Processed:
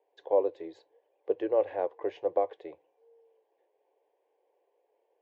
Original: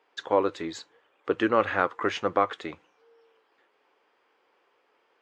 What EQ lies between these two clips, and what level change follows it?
band-pass filter 540 Hz, Q 1.1; distance through air 51 m; static phaser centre 540 Hz, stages 4; 0.0 dB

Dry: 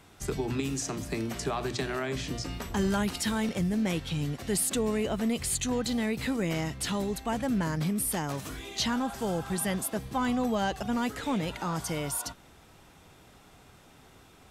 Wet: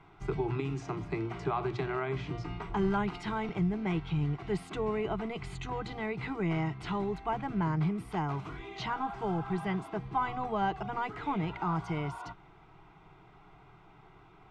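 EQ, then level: resonant low-pass 1.9 kHz, resonance Q 8.3; bass shelf 82 Hz +6.5 dB; static phaser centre 360 Hz, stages 8; 0.0 dB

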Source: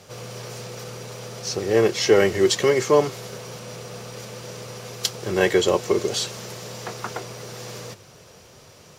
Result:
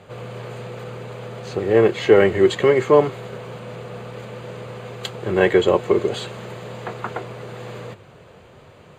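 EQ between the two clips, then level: boxcar filter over 8 samples; +3.5 dB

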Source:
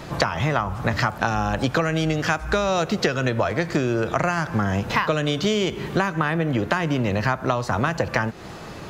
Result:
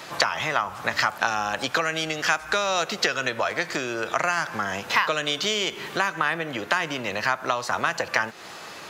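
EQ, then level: high-pass 1.4 kHz 6 dB/octave; +4.0 dB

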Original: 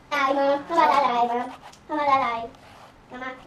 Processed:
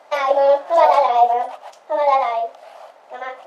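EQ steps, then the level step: resonant high-pass 630 Hz, resonance Q 4.9; dynamic bell 1.4 kHz, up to -4 dB, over -26 dBFS, Q 1.2; 0.0 dB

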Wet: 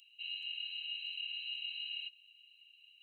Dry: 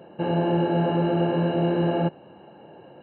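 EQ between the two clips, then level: rippled Chebyshev high-pass 2.5 kHz, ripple 3 dB; +6.5 dB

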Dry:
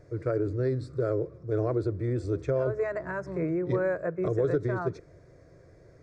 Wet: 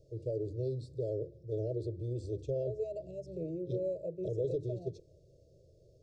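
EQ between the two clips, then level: Chebyshev band-stop 630–2800 Hz, order 5; peaking EQ 250 Hz -9 dB 0.83 oct; hum notches 50/100/150/200/250/300/350 Hz; -5.0 dB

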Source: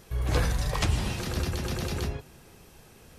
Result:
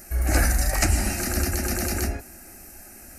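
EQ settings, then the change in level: treble shelf 5.5 kHz +11 dB; static phaser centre 690 Hz, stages 8; +8.0 dB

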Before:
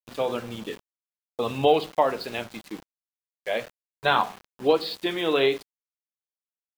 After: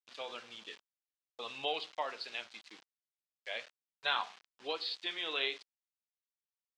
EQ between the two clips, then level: band-pass filter 4.7 kHz, Q 0.76; distance through air 89 m; -2.0 dB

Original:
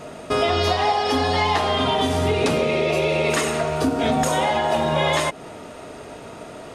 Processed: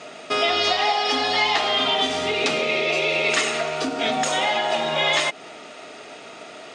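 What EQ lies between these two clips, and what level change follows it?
cabinet simulation 190–8000 Hz, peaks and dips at 520 Hz -4 dB, 1 kHz -9 dB, 1.6 kHz -5 dB; tilt shelf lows -8 dB, about 660 Hz; treble shelf 6.2 kHz -10 dB; 0.0 dB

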